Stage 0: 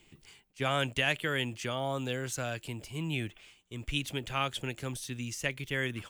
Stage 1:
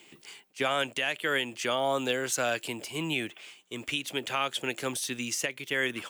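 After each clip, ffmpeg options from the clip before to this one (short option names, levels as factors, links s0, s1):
-af "highpass=300,alimiter=level_in=1.12:limit=0.0631:level=0:latency=1:release=391,volume=0.891,volume=2.66"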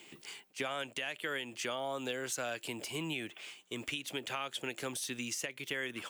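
-af "acompressor=threshold=0.0141:ratio=3"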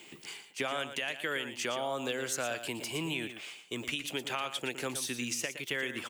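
-af "aecho=1:1:116:0.299,volume=1.41"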